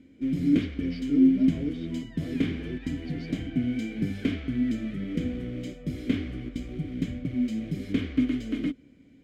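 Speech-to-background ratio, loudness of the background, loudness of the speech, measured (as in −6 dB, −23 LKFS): −4.0 dB, −29.0 LKFS, −33.0 LKFS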